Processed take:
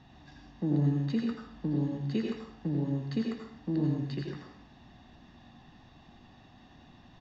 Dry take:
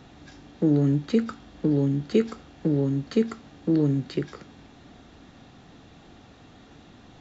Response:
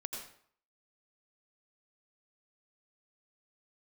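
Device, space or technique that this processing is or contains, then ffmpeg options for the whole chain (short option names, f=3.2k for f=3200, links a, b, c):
microphone above a desk: -filter_complex "[0:a]lowpass=f=5.7k:w=0.5412,lowpass=f=5.7k:w=1.3066,aecho=1:1:1.1:0.59[a];[1:a]atrim=start_sample=2205[b];[a][b]afir=irnorm=-1:irlink=0,volume=-6dB"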